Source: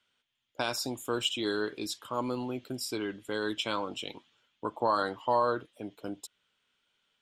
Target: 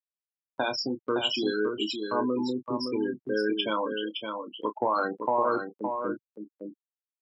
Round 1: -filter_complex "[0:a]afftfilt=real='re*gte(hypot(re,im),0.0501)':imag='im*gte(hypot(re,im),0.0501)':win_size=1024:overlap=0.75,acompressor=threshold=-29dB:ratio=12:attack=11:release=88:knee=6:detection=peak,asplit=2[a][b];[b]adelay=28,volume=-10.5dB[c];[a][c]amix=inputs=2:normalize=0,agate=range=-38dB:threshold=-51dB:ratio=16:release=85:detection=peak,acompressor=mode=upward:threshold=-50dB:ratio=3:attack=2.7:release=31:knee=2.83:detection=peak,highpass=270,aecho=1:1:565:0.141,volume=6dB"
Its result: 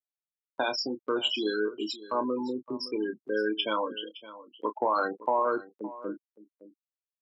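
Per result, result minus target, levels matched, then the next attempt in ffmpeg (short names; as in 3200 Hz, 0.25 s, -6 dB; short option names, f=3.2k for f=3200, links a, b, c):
125 Hz band -7.5 dB; echo-to-direct -11 dB
-filter_complex "[0:a]afftfilt=real='re*gte(hypot(re,im),0.0501)':imag='im*gte(hypot(re,im),0.0501)':win_size=1024:overlap=0.75,acompressor=threshold=-29dB:ratio=12:attack=11:release=88:knee=6:detection=peak,asplit=2[a][b];[b]adelay=28,volume=-10.5dB[c];[a][c]amix=inputs=2:normalize=0,agate=range=-38dB:threshold=-51dB:ratio=16:release=85:detection=peak,acompressor=mode=upward:threshold=-50dB:ratio=3:attack=2.7:release=31:knee=2.83:detection=peak,highpass=130,aecho=1:1:565:0.141,volume=6dB"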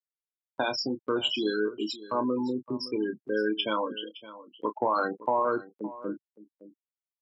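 echo-to-direct -11 dB
-filter_complex "[0:a]afftfilt=real='re*gte(hypot(re,im),0.0501)':imag='im*gte(hypot(re,im),0.0501)':win_size=1024:overlap=0.75,acompressor=threshold=-29dB:ratio=12:attack=11:release=88:knee=6:detection=peak,asplit=2[a][b];[b]adelay=28,volume=-10.5dB[c];[a][c]amix=inputs=2:normalize=0,agate=range=-38dB:threshold=-51dB:ratio=16:release=85:detection=peak,acompressor=mode=upward:threshold=-50dB:ratio=3:attack=2.7:release=31:knee=2.83:detection=peak,highpass=130,aecho=1:1:565:0.501,volume=6dB"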